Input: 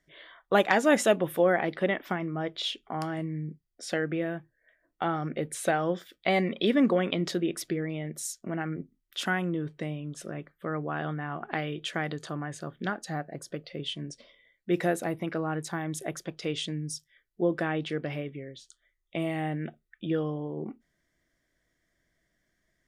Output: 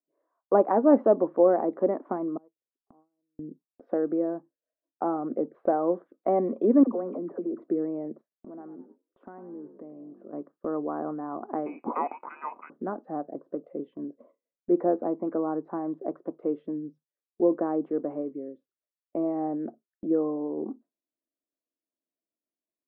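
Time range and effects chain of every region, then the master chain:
2.37–3.39 s: bass shelf 460 Hz +4.5 dB + inverted gate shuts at -34 dBFS, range -29 dB + valve stage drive 42 dB, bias 0.7
6.83–7.62 s: low-pass 2.4 kHz 24 dB/octave + phase dispersion lows, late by 45 ms, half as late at 650 Hz + compression 2:1, threshold -36 dBFS
8.21–10.33 s: compression 2.5:1, threshold -47 dBFS + frequency-shifting echo 104 ms, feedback 43%, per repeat +49 Hz, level -12.5 dB
11.66–12.70 s: frequency inversion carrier 2.7 kHz + waveshaping leveller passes 3
whole clip: elliptic band-pass 250–1100 Hz, stop band 80 dB; gate with hold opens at -48 dBFS; bass shelf 460 Hz +8.5 dB

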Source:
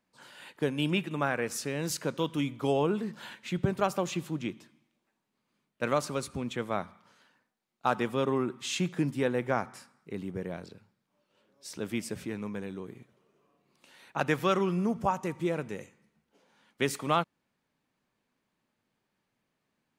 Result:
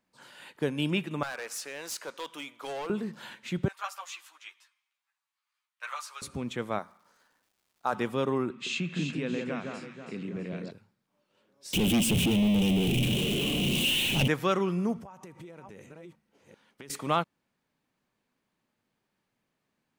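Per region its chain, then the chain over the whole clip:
1.23–2.90 s: high-pass 670 Hz + overload inside the chain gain 32.5 dB
3.68–6.22 s: high-pass 1 kHz 24 dB/octave + three-phase chorus
6.78–7.92 s: high-pass 480 Hz 6 dB/octave + peaking EQ 2.9 kHz -10 dB 0.98 oct + crackle 540 per s -61 dBFS
8.50–10.71 s: compression 2:1, threshold -35 dBFS + cabinet simulation 160–7600 Hz, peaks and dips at 160 Hz +8 dB, 230 Hz +6 dB, 840 Hz -8 dB, 2.6 kHz +9 dB, 4 kHz +3 dB, 5.8 kHz -4 dB + echo whose repeats swap between lows and highs 163 ms, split 1.8 kHz, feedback 65%, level -3 dB
11.73–14.28 s: jump at every zero crossing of -28.5 dBFS + FFT filter 240 Hz 0 dB, 1.3 kHz -24 dB, 1.9 kHz -19 dB, 2.9 kHz +8 dB, 4.7 kHz -16 dB, 7.9 kHz -6 dB + waveshaping leveller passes 3
14.98–16.90 s: chunks repeated in reverse 391 ms, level -12 dB + band-stop 7.1 kHz, Q 18 + compression 16:1, threshold -42 dBFS
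whole clip: none

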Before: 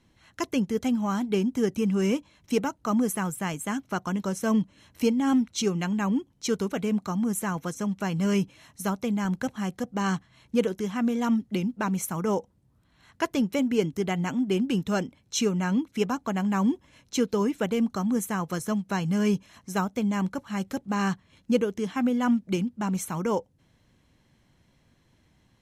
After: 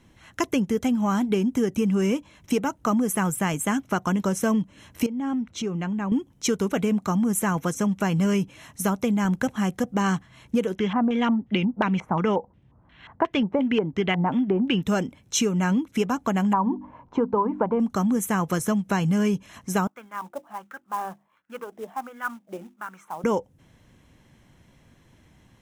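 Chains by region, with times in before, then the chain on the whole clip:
5.06–6.12 s: low-pass 2 kHz 6 dB/octave + compression 3:1, threshold -35 dBFS
10.75–14.83 s: peaking EQ 1.9 kHz +3.5 dB 0.6 oct + LFO low-pass square 2.8 Hz 890–3100 Hz
16.53–17.80 s: resonant low-pass 960 Hz, resonance Q 5.4 + hum notches 50/100/150/200/250/300 Hz
19.87–23.24 s: hum notches 50/100/150/200/250/300/350 Hz + wah-wah 1.4 Hz 620–1500 Hz, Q 4.6 + short-mantissa float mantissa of 2-bit
whole clip: peaking EQ 4.4 kHz -7 dB 0.42 oct; compression, threshold -27 dBFS; trim +7.5 dB

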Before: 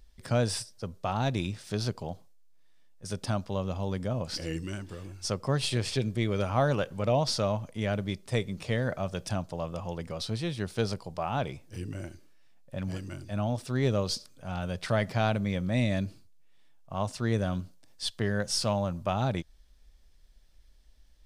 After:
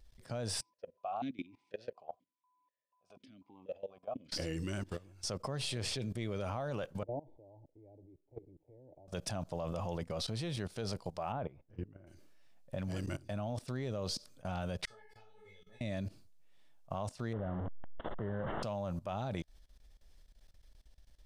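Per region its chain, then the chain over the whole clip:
0.60–4.31 s: whistle 1 kHz -58 dBFS + stepped vowel filter 4.1 Hz
7.03–9.08 s: cascade formant filter u + static phaser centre 520 Hz, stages 4
11.32–12.07 s: low-pass 1.5 kHz + upward expansion, over -40 dBFS
14.85–15.81 s: feedback comb 430 Hz, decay 0.39 s, mix 100% + detune thickener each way 49 cents
17.33–18.63 s: one-bit delta coder 16 kbps, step -27.5 dBFS + boxcar filter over 18 samples
whole clip: peaking EQ 630 Hz +3.5 dB 0.83 oct; level held to a coarse grid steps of 20 dB; trim +2.5 dB

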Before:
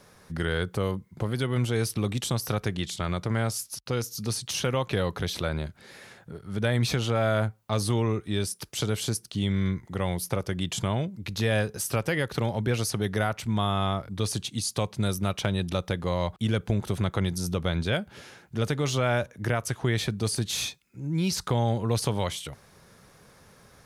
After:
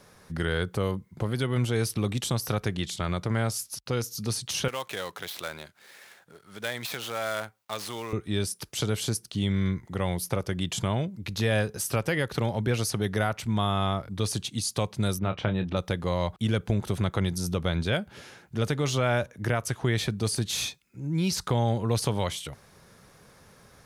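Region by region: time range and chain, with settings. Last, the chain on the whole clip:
4.68–8.13 s: dead-time distortion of 0.066 ms + high-pass 1.1 kHz 6 dB/octave
15.19–15.77 s: low-pass 2.5 kHz + doubling 27 ms -9.5 dB
whole clip: none

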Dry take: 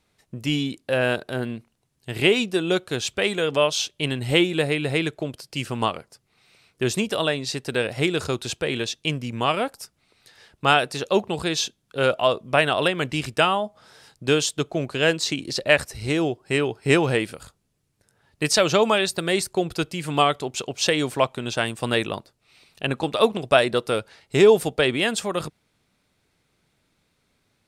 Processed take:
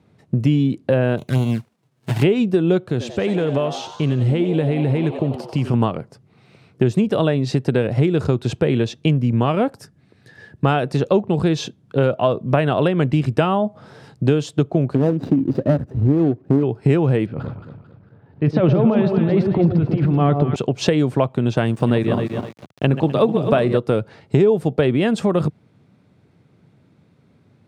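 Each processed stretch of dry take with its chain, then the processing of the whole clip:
1.17–2.22 s: formants flattened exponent 0.3 + touch-sensitive flanger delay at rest 10.4 ms, full sweep at -23.5 dBFS
2.83–5.74 s: compression 2:1, threshold -34 dBFS + frequency-shifting echo 91 ms, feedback 65%, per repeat +110 Hz, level -11 dB
9.78–10.65 s: peaking EQ 1.3 kHz -7 dB 2.7 oct + small resonant body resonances 1.7 kHz, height 17 dB, ringing for 25 ms
14.95–16.63 s: median filter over 41 samples + peaking EQ 270 Hz +9 dB 0.26 oct
17.26–20.56 s: transient shaper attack -9 dB, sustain +11 dB + distance through air 330 m + echo whose repeats swap between lows and highs 111 ms, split 1 kHz, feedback 61%, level -4.5 dB
21.65–23.77 s: backward echo that repeats 127 ms, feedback 52%, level -8 dB + small samples zeroed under -41 dBFS
whole clip: high-pass 110 Hz 24 dB/octave; tilt EQ -4.5 dB/octave; compression 4:1, threshold -22 dBFS; trim +7.5 dB

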